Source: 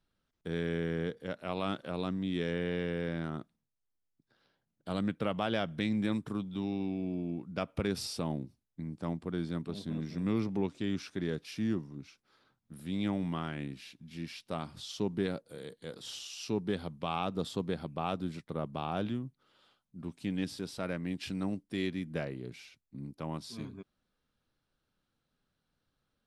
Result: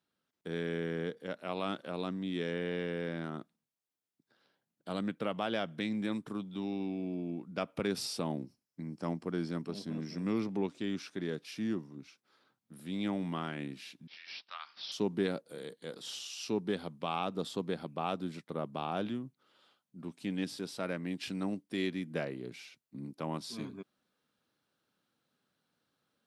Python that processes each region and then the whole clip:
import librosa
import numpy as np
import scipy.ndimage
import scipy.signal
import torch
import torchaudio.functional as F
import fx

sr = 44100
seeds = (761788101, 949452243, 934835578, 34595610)

y = fx.chain(x, sr, fx.peak_eq(hz=5300.0, db=9.5, octaves=0.23),
    fx.notch(hz=3600.0, q=8.2), at=(8.37, 10.38))
y = fx.chain(y, sr, fx.highpass(hz=1200.0, slope=24),
    fx.resample_bad(factor=4, down='none', up='filtered'), at=(14.07, 14.92))
y = scipy.signal.sosfilt(scipy.signal.butter(2, 180.0, 'highpass', fs=sr, output='sos'), y)
y = fx.rider(y, sr, range_db=3, speed_s=2.0)